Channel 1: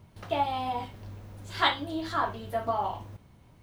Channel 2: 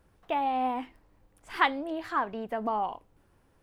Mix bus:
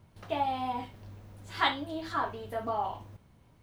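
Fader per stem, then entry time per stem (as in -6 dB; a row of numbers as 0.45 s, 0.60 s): -4.5 dB, -7.5 dB; 0.00 s, 0.00 s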